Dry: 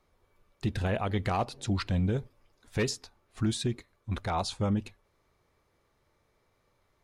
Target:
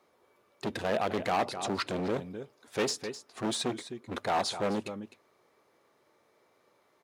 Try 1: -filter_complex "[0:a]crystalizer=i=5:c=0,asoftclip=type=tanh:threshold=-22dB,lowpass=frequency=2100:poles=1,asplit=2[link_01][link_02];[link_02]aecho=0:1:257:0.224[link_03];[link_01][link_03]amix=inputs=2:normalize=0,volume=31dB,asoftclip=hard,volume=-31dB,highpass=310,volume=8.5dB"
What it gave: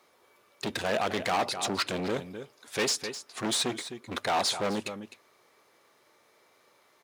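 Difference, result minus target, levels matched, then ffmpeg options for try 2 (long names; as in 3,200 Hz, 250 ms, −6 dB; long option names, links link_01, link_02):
soft clipping: distortion +8 dB; 500 Hz band −2.5 dB
-filter_complex "[0:a]crystalizer=i=5:c=0,asoftclip=type=tanh:threshold=-14.5dB,lowpass=frequency=680:poles=1,asplit=2[link_01][link_02];[link_02]aecho=0:1:257:0.224[link_03];[link_01][link_03]amix=inputs=2:normalize=0,volume=31dB,asoftclip=hard,volume=-31dB,highpass=310,volume=8.5dB"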